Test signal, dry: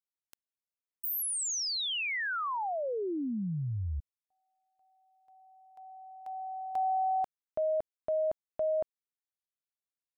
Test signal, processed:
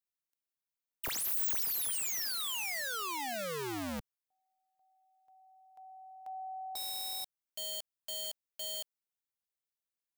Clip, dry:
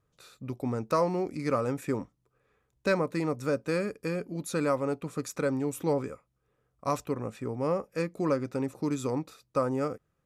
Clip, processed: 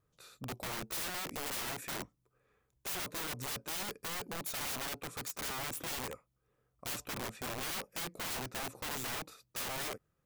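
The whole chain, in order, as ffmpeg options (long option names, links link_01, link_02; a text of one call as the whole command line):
ffmpeg -i in.wav -af "aeval=exprs='(mod(39.8*val(0)+1,2)-1)/39.8':channel_layout=same,highshelf=frequency=12000:gain=7,volume=-3dB" out.wav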